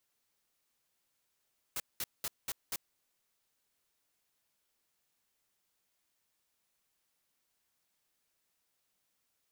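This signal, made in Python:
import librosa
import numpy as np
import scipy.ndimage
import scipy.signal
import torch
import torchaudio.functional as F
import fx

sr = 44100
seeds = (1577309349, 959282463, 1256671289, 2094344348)

y = fx.noise_burst(sr, seeds[0], colour='white', on_s=0.04, off_s=0.2, bursts=5, level_db=-36.5)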